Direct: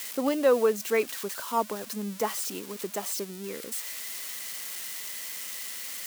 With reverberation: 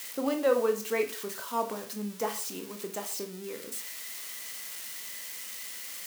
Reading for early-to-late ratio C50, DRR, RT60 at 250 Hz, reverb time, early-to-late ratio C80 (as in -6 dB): 11.5 dB, 5.0 dB, 0.50 s, 0.40 s, 16.5 dB